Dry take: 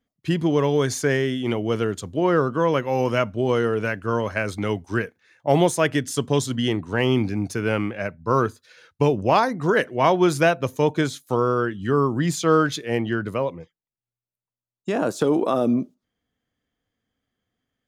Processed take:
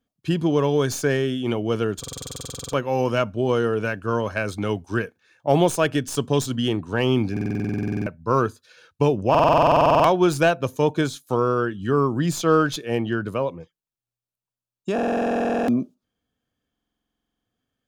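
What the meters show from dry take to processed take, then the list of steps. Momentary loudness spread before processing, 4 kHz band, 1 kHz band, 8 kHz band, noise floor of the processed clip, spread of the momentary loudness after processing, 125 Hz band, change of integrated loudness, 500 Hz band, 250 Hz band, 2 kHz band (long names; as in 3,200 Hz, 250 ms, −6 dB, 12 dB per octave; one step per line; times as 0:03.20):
7 LU, 0.0 dB, +1.5 dB, −0.5 dB, below −85 dBFS, 10 LU, 0.0 dB, 0.0 dB, 0.0 dB, −0.5 dB, −2.0 dB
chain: stylus tracing distortion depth 0.025 ms
notch filter 2,000 Hz, Q 5.3
buffer that repeats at 0:01.99/0:07.32/0:09.30/0:14.94/0:16.72, samples 2,048, times 15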